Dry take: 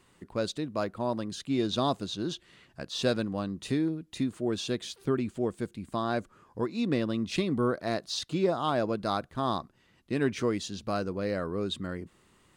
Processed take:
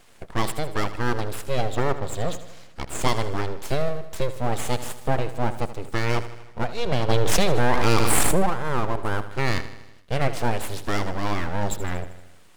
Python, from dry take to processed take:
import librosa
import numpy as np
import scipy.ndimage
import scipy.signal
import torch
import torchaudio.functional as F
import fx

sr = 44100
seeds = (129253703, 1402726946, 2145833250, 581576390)

p1 = fx.env_lowpass_down(x, sr, base_hz=780.0, full_db=-23.5, at=(1.6, 3.01))
p2 = fx.spec_repair(p1, sr, seeds[0], start_s=8.27, length_s=0.96, low_hz=900.0, high_hz=6900.0, source='after')
p3 = fx.rider(p2, sr, range_db=10, speed_s=0.5)
p4 = p2 + (p3 * 10.0 ** (3.0 / 20.0))
p5 = np.abs(p4)
p6 = p5 + fx.echo_feedback(p5, sr, ms=78, feedback_pct=59, wet_db=-13.5, dry=0)
y = fx.env_flatten(p6, sr, amount_pct=100, at=(7.08, 8.43), fade=0.02)